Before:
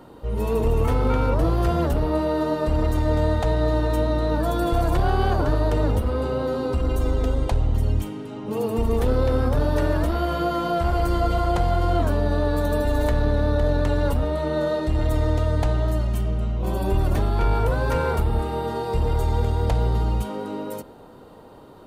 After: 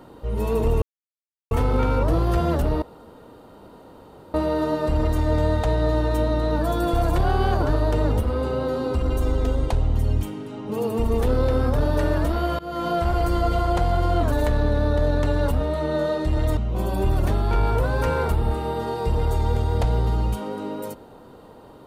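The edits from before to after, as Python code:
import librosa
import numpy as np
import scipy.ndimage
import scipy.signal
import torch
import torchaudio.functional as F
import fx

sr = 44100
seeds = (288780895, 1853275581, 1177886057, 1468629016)

y = fx.edit(x, sr, fx.insert_silence(at_s=0.82, length_s=0.69),
    fx.insert_room_tone(at_s=2.13, length_s=1.52),
    fx.fade_in_from(start_s=10.38, length_s=0.28, floor_db=-22.5),
    fx.cut(start_s=12.11, length_s=0.83),
    fx.cut(start_s=15.19, length_s=1.26), tone=tone)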